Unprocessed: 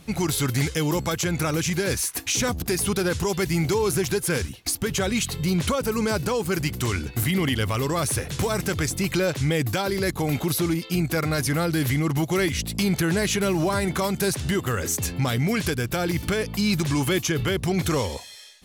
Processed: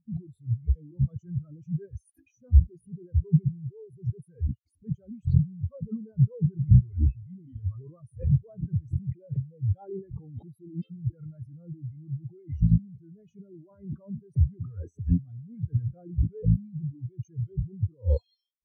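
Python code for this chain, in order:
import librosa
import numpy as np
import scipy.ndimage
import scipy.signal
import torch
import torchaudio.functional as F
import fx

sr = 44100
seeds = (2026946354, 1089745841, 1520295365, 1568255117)

y = fx.over_compress(x, sr, threshold_db=-32.0, ratio=-1.0)
y = fx.spectral_expand(y, sr, expansion=4.0)
y = F.gain(torch.from_numpy(y), 7.0).numpy()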